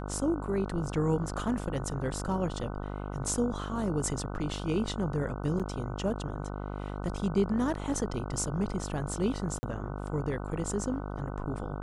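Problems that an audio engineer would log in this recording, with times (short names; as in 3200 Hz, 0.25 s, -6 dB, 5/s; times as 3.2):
buzz 50 Hz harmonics 30 -37 dBFS
5.59–5.6 gap 6.9 ms
9.59–9.63 gap 40 ms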